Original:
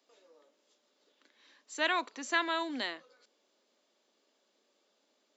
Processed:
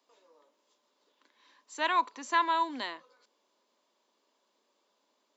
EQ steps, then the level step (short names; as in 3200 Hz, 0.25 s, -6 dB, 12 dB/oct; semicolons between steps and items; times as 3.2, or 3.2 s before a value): bell 1000 Hz +12.5 dB 0.29 oct; -2.0 dB